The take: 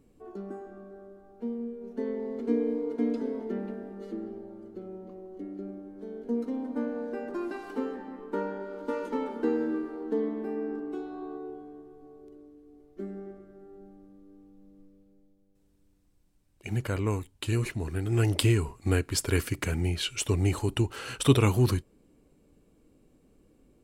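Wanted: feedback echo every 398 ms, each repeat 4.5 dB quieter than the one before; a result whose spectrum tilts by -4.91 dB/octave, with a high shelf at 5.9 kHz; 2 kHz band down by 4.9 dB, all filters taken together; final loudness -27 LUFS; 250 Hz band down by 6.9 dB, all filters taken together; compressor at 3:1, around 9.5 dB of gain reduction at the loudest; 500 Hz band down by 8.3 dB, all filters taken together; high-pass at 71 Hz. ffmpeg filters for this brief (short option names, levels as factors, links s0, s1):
-af "highpass=71,equalizer=f=250:t=o:g=-6,equalizer=f=500:t=o:g=-8,equalizer=f=2000:t=o:g=-6.5,highshelf=f=5900:g=3.5,acompressor=threshold=0.0224:ratio=3,aecho=1:1:398|796|1194|1592|1990|2388|2786|3184|3582:0.596|0.357|0.214|0.129|0.0772|0.0463|0.0278|0.0167|0.01,volume=3.55"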